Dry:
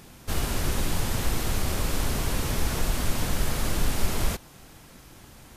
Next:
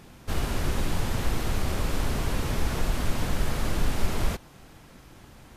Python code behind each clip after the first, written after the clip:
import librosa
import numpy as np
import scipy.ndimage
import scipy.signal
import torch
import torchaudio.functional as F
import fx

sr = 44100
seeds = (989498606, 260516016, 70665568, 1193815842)

y = fx.high_shelf(x, sr, hz=4800.0, db=-8.5)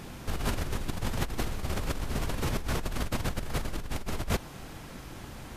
y = fx.over_compress(x, sr, threshold_db=-31.0, ratio=-1.0)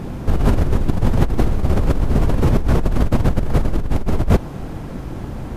y = fx.tilt_shelf(x, sr, db=8.5, hz=1200.0)
y = y * librosa.db_to_amplitude(8.0)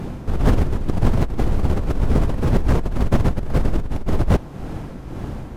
y = x * (1.0 - 0.5 / 2.0 + 0.5 / 2.0 * np.cos(2.0 * np.pi * 1.9 * (np.arange(len(x)) / sr)))
y = fx.doppler_dist(y, sr, depth_ms=0.69)